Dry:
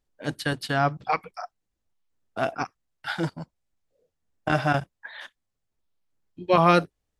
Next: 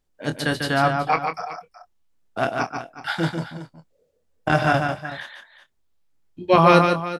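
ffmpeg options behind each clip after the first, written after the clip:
-filter_complex "[0:a]asplit=2[a][b];[b]adelay=25,volume=-9.5dB[c];[a][c]amix=inputs=2:normalize=0,asplit=2[d][e];[e]aecho=0:1:145|373:0.531|0.188[f];[d][f]amix=inputs=2:normalize=0,volume=3.5dB"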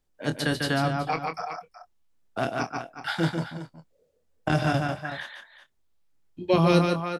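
-filter_complex "[0:a]acrossover=split=470|3000[a][b][c];[b]acompressor=threshold=-26dB:ratio=6[d];[a][d][c]amix=inputs=3:normalize=0,volume=-1.5dB"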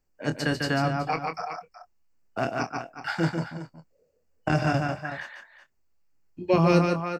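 -af "superequalizer=13b=0.282:16b=0.282"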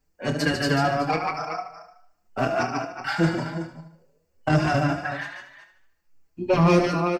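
-filter_complex "[0:a]aecho=1:1:74|148|222|296|370|444:0.316|0.161|0.0823|0.0419|0.0214|0.0109,asoftclip=type=tanh:threshold=-18dB,asplit=2[a][b];[b]adelay=4.7,afreqshift=2.9[c];[a][c]amix=inputs=2:normalize=1,volume=7.5dB"

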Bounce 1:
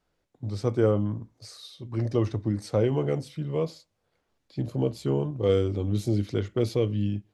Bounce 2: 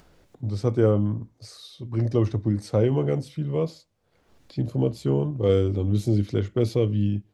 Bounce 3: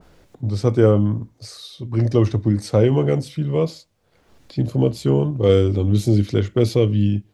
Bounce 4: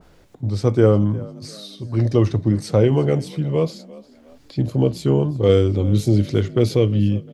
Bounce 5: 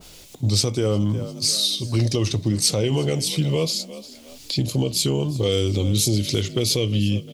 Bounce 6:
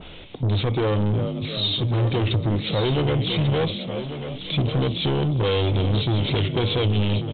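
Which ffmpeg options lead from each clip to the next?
-af "lowshelf=f=390:g=4.5,acompressor=mode=upward:threshold=-42dB:ratio=2.5"
-af "adynamicequalizer=threshold=0.00794:dfrequency=1600:dqfactor=0.7:tfrequency=1600:tqfactor=0.7:attack=5:release=100:ratio=0.375:range=1.5:mode=boostabove:tftype=highshelf,volume=5.5dB"
-filter_complex "[0:a]asplit=4[a][b][c][d];[b]adelay=353,afreqshift=47,volume=-21dB[e];[c]adelay=706,afreqshift=94,volume=-29.4dB[f];[d]adelay=1059,afreqshift=141,volume=-37.8dB[g];[a][e][f][g]amix=inputs=4:normalize=0"
-af "alimiter=limit=-14.5dB:level=0:latency=1:release=233,aexciter=amount=3.5:drive=8.6:freq=2.4k,volume=2dB"
-af "aresample=8000,asoftclip=type=tanh:threshold=-26dB,aresample=44100,aecho=1:1:1142:0.299,volume=7.5dB"

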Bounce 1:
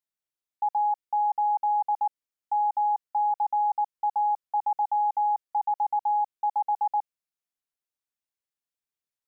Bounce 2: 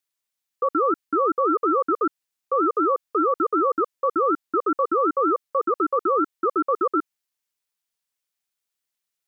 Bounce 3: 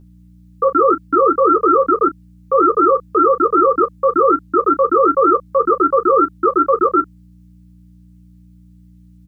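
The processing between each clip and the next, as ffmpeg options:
-af "tiltshelf=f=970:g=-4.5,aeval=exprs='val(0)*sin(2*PI*410*n/s+410*0.3/5.3*sin(2*PI*5.3*n/s))':c=same,volume=7.5dB"
-af "aeval=exprs='val(0)+0.00355*(sin(2*PI*60*n/s)+sin(2*PI*2*60*n/s)/2+sin(2*PI*3*60*n/s)/3+sin(2*PI*4*60*n/s)/4+sin(2*PI*5*60*n/s)/5)':c=same,aecho=1:1:11|39:0.668|0.2,volume=6.5dB"

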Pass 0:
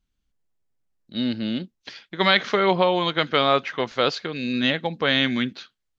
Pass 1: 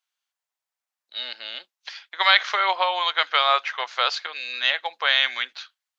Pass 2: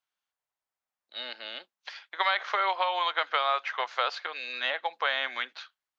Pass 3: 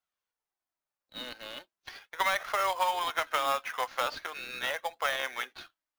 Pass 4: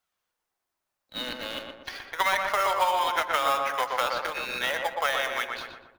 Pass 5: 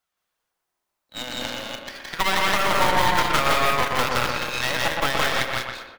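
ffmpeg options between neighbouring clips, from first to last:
-af "highpass=f=760:w=0.5412,highpass=f=760:w=1.3066,volume=2.5dB"
-filter_complex "[0:a]highshelf=f=2.1k:g=-11,acrossover=split=1300|4000[a][b][c];[a]acompressor=threshold=-30dB:ratio=4[d];[b]acompressor=threshold=-31dB:ratio=4[e];[c]acompressor=threshold=-45dB:ratio=4[f];[d][e][f]amix=inputs=3:normalize=0,volume=2dB"
-filter_complex "[0:a]asplit=2[a][b];[b]acrusher=samples=11:mix=1:aa=0.000001,volume=-7.5dB[c];[a][c]amix=inputs=2:normalize=0,flanger=delay=1.4:depth=2.7:regen=55:speed=0.4:shape=triangular,acrusher=bits=4:mode=log:mix=0:aa=0.000001"
-filter_complex "[0:a]asplit=2[a][b];[b]adelay=121,lowpass=f=1.7k:p=1,volume=-3dB,asplit=2[c][d];[d]adelay=121,lowpass=f=1.7k:p=1,volume=0.5,asplit=2[e][f];[f]adelay=121,lowpass=f=1.7k:p=1,volume=0.5,asplit=2[g][h];[h]adelay=121,lowpass=f=1.7k:p=1,volume=0.5,asplit=2[i][j];[j]adelay=121,lowpass=f=1.7k:p=1,volume=0.5,asplit=2[k][l];[l]adelay=121,lowpass=f=1.7k:p=1,volume=0.5,asplit=2[m][n];[n]adelay=121,lowpass=f=1.7k:p=1,volume=0.5[o];[a][c][e][g][i][k][m][o]amix=inputs=8:normalize=0,asplit=2[p][q];[q]acompressor=threshold=-35dB:ratio=6,volume=2.5dB[r];[p][r]amix=inputs=2:normalize=0"
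-filter_complex "[0:a]asplit=2[a][b];[b]aecho=0:1:169.1|201.2:0.891|0.501[c];[a][c]amix=inputs=2:normalize=0,aeval=exprs='0.473*(cos(1*acos(clip(val(0)/0.473,-1,1)))-cos(1*PI/2))+0.0944*(cos(8*acos(clip(val(0)/0.473,-1,1)))-cos(8*PI/2))':c=same"

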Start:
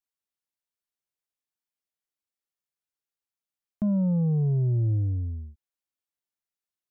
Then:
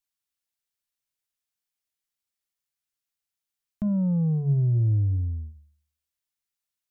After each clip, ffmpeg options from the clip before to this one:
-af "equalizer=f=460:w=0.4:g=-8.5,bandreject=f=73.85:t=h:w=4,bandreject=f=147.7:t=h:w=4,bandreject=f=221.55:t=h:w=4,bandreject=f=295.4:t=h:w=4,bandreject=f=369.25:t=h:w=4,volume=5dB"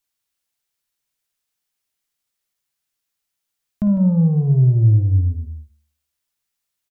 -af "aecho=1:1:54|154:0.335|0.282,volume=7.5dB"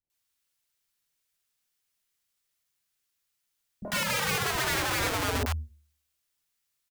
-filter_complex "[0:a]aeval=exprs='(mod(14.1*val(0)+1,2)-1)/14.1':c=same,acrossover=split=240|720[a][b][c];[b]adelay=30[d];[c]adelay=100[e];[a][d][e]amix=inputs=3:normalize=0"

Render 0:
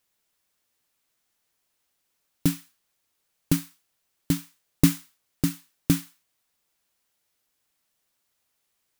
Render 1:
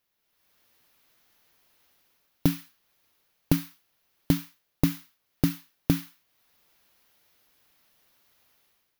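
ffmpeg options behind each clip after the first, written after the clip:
-af "dynaudnorm=f=170:g=5:m=13dB,equalizer=f=8.1k:w=1.9:g=-12.5,acompressor=threshold=-16dB:ratio=5,volume=-1.5dB"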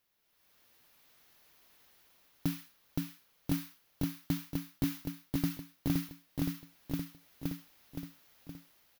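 -af "aecho=1:1:519|1038|1557|2076|2595|3114|3633:0.631|0.341|0.184|0.0994|0.0537|0.029|0.0156,asoftclip=type=tanh:threshold=-10.5dB,alimiter=limit=-19.5dB:level=0:latency=1:release=365"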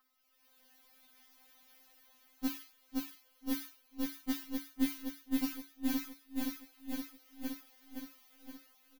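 -filter_complex "[0:a]aeval=exprs='val(0)+0.00141*sin(2*PI*1200*n/s)':c=same,asplit=2[a][b];[b]adelay=493,lowpass=f=3.2k:p=1,volume=-18.5dB,asplit=2[c][d];[d]adelay=493,lowpass=f=3.2k:p=1,volume=0.45,asplit=2[e][f];[f]adelay=493,lowpass=f=3.2k:p=1,volume=0.45,asplit=2[g][h];[h]adelay=493,lowpass=f=3.2k:p=1,volume=0.45[i];[a][c][e][g][i]amix=inputs=5:normalize=0,afftfilt=real='re*3.46*eq(mod(b,12),0)':imag='im*3.46*eq(mod(b,12),0)':win_size=2048:overlap=0.75,volume=3dB"

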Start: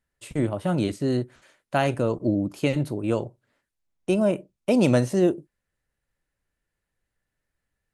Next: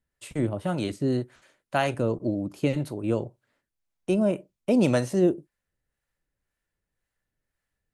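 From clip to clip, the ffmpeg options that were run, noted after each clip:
-filter_complex "[0:a]acrossover=split=550[a][b];[a]aeval=exprs='val(0)*(1-0.5/2+0.5/2*cos(2*PI*1.9*n/s))':c=same[c];[b]aeval=exprs='val(0)*(1-0.5/2-0.5/2*cos(2*PI*1.9*n/s))':c=same[d];[c][d]amix=inputs=2:normalize=0"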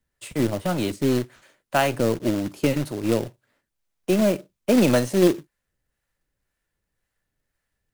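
-filter_complex "[0:a]acrossover=split=170[a][b];[a]aeval=exprs='clip(val(0),-1,0.00473)':c=same[c];[c][b]amix=inputs=2:normalize=0,acrusher=bits=3:mode=log:mix=0:aa=0.000001,volume=4dB"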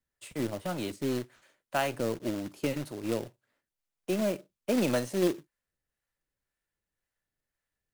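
-af "lowshelf=f=220:g=-4.5,volume=-8dB"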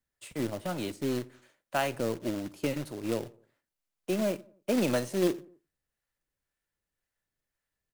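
-filter_complex "[0:a]asplit=2[a][b];[b]adelay=87,lowpass=f=1.5k:p=1,volume=-22dB,asplit=2[c][d];[d]adelay=87,lowpass=f=1.5k:p=1,volume=0.49,asplit=2[e][f];[f]adelay=87,lowpass=f=1.5k:p=1,volume=0.49[g];[a][c][e][g]amix=inputs=4:normalize=0"

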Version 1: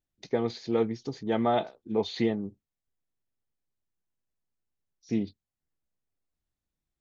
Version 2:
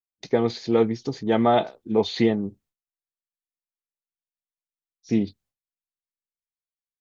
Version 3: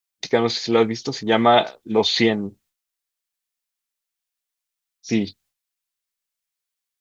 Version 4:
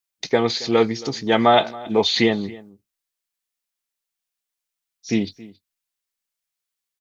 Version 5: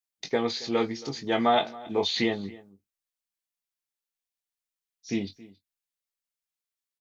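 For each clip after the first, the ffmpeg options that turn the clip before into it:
-af "agate=range=-33dB:threshold=-59dB:ratio=3:detection=peak,volume=6.5dB"
-af "tiltshelf=f=910:g=-6,volume=6dB"
-filter_complex "[0:a]asplit=2[a][b];[b]adelay=274.1,volume=-20dB,highshelf=f=4k:g=-6.17[c];[a][c]amix=inputs=2:normalize=0"
-filter_complex "[0:a]asplit=2[a][b];[b]adelay=21,volume=-7dB[c];[a][c]amix=inputs=2:normalize=0,volume=-8.5dB"

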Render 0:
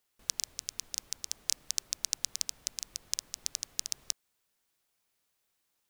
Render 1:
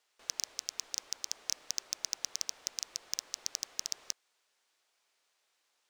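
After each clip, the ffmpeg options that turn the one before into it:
-filter_complex "[0:a]acrossover=split=360 7900:gain=0.0794 1 0.141[a][b][c];[a][b][c]amix=inputs=3:normalize=0,asoftclip=type=tanh:threshold=-20dB,volume=6dB"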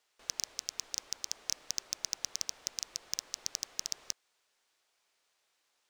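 -af "lowshelf=f=180:g=6"

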